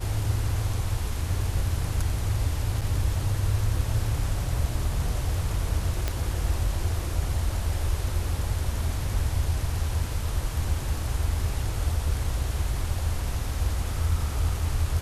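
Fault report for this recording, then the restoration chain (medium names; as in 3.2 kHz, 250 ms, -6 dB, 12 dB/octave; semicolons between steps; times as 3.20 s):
2.81–2.82 s: dropout 6.3 ms
6.08 s: pop -12 dBFS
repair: de-click; interpolate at 2.81 s, 6.3 ms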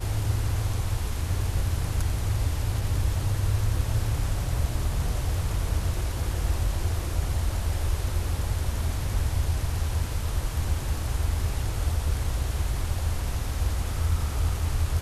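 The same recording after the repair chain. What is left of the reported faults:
nothing left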